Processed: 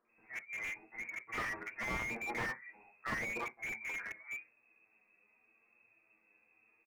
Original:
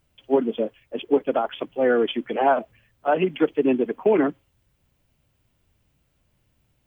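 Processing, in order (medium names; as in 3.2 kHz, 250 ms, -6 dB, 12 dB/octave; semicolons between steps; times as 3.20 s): three bands offset in time highs, mids, lows 50/90 ms, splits 160/1000 Hz; frequency inversion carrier 2.6 kHz; flange 0.87 Hz, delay 8.4 ms, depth 1.5 ms, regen +30%; inverted gate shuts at -14 dBFS, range -37 dB; in parallel at -11 dB: bit crusher 6-bit; on the sum: three-band isolator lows -13 dB, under 210 Hz, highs -16 dB, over 2 kHz; harmonic-percussive split percussive -16 dB; on a send at -12 dB: peaking EQ 430 Hz +4.5 dB + reverberation RT60 0.15 s, pre-delay 3 ms; on the sum: slew-rate limiter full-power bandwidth 7.5 Hz; trim +10.5 dB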